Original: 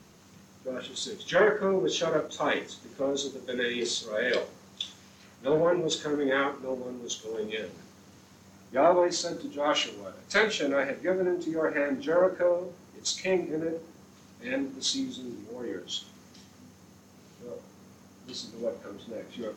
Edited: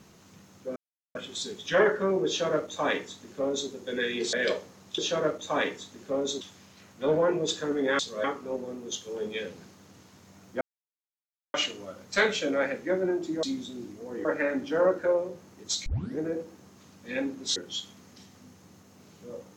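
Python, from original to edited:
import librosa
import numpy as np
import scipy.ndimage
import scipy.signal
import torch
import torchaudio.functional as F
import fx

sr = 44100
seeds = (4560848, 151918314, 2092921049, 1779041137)

y = fx.edit(x, sr, fx.insert_silence(at_s=0.76, length_s=0.39),
    fx.duplicate(start_s=1.88, length_s=1.43, to_s=4.84),
    fx.move(start_s=3.94, length_s=0.25, to_s=6.42),
    fx.silence(start_s=8.79, length_s=0.93),
    fx.tape_start(start_s=13.22, length_s=0.32),
    fx.move(start_s=14.92, length_s=0.82, to_s=11.61), tone=tone)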